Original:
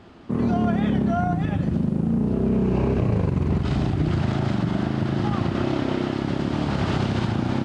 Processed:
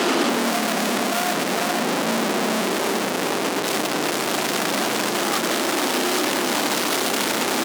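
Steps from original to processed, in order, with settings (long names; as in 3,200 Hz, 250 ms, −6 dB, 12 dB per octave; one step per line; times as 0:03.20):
multi-tap delay 255/463 ms −16/−6 dB
fuzz pedal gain 50 dB, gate −57 dBFS
high-pass filter 260 Hz 24 dB per octave
high-shelf EQ 4,800 Hz +7 dB
brickwall limiter −9.5 dBFS, peak gain reduction 8 dB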